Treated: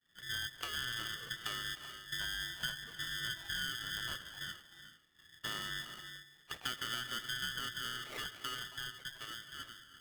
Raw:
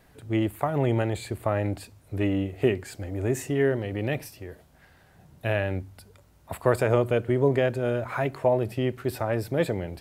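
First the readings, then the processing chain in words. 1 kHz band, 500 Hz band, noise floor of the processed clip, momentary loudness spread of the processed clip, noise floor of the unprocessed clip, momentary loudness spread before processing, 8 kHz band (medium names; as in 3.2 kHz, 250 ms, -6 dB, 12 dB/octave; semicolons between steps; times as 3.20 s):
-13.5 dB, -33.0 dB, -64 dBFS, 10 LU, -58 dBFS, 12 LU, -1.5 dB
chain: fade out at the end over 3.18 s; expander -48 dBFS; peaking EQ 920 Hz -12 dB 0.59 oct; compression 3:1, threshold -36 dBFS, peak gain reduction 14 dB; frequency inversion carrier 2.7 kHz; gated-style reverb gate 450 ms rising, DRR 8.5 dB; polarity switched at an audio rate 820 Hz; trim -4.5 dB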